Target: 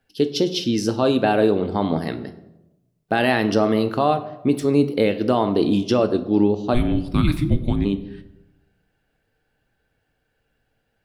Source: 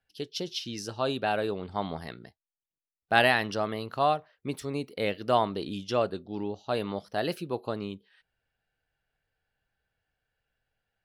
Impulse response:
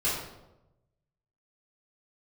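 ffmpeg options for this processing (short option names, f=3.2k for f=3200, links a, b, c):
-filter_complex "[0:a]equalizer=f=260:t=o:w=1.8:g=11,alimiter=limit=-15.5dB:level=0:latency=1:release=191,asplit=3[a][b][c];[a]afade=t=out:st=6.73:d=0.02[d];[b]afreqshift=-480,afade=t=in:st=6.73:d=0.02,afade=t=out:st=7.84:d=0.02[e];[c]afade=t=in:st=7.84:d=0.02[f];[d][e][f]amix=inputs=3:normalize=0,asplit=2[g][h];[1:a]atrim=start_sample=2205[i];[h][i]afir=irnorm=-1:irlink=0,volume=-18dB[j];[g][j]amix=inputs=2:normalize=0,volume=7.5dB"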